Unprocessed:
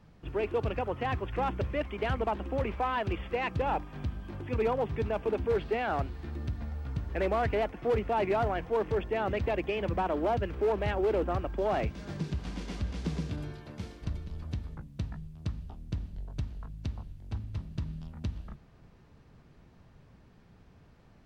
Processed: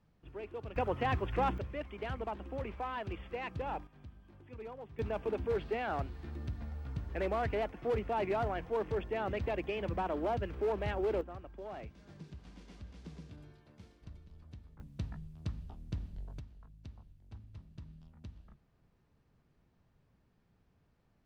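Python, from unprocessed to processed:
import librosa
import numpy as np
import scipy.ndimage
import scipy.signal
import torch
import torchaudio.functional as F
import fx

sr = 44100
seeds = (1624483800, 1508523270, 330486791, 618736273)

y = fx.gain(x, sr, db=fx.steps((0.0, -13.0), (0.76, -0.5), (1.58, -8.5), (3.87, -17.5), (4.99, -5.0), (11.21, -15.5), (14.8, -4.0), (16.39, -14.0)))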